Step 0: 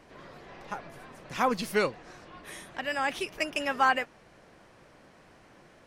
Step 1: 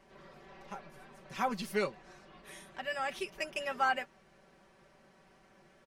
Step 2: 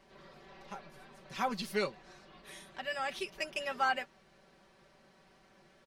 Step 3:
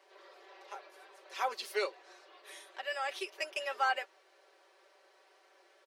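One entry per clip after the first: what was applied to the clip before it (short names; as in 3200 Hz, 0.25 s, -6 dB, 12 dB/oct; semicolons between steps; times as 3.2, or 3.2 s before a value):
comb 5.2 ms, depth 73%; gain -8.5 dB
bell 4100 Hz +5.5 dB 0.78 oct; gain -1 dB
steep high-pass 360 Hz 48 dB/oct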